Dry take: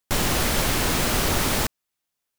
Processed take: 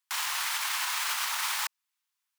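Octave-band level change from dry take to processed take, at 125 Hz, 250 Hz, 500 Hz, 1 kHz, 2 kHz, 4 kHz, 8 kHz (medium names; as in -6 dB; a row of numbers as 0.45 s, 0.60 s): under -40 dB, under -40 dB, -28.5 dB, -6.5 dB, -4.5 dB, -4.5 dB, -6.0 dB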